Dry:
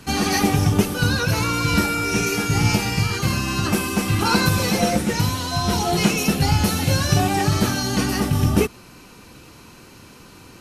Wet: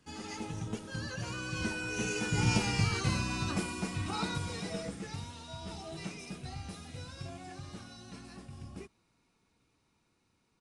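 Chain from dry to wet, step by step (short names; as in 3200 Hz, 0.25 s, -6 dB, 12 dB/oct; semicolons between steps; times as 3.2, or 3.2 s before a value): Doppler pass-by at 2.8, 26 m/s, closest 15 m; downsampling 22050 Hz; gain -8.5 dB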